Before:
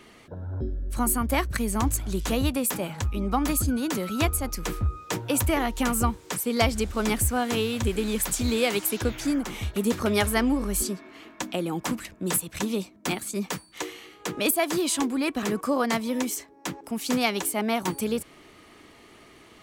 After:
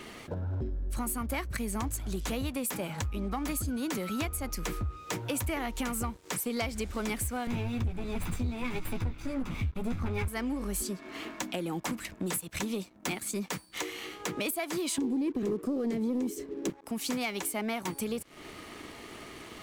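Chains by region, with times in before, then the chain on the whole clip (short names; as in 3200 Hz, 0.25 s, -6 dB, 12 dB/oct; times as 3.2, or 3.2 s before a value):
7.47–10.28 minimum comb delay 0.81 ms + tone controls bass +12 dB, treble -10 dB + doubler 12 ms -5 dB
14.98–16.7 compressor 3:1, threshold -28 dBFS + resonant low shelf 600 Hz +13.5 dB, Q 3
whole clip: dynamic EQ 2200 Hz, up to +5 dB, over -46 dBFS, Q 5.1; compressor 4:1, threshold -39 dBFS; sample leveller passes 2; gain -1 dB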